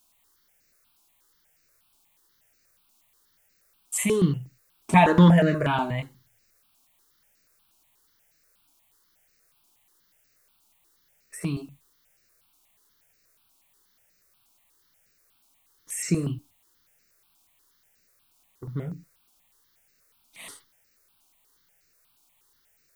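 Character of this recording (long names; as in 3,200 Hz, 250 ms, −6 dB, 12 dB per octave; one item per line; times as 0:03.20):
a quantiser's noise floor 12 bits, dither triangular
notches that jump at a steady rate 8.3 Hz 500–3,300 Hz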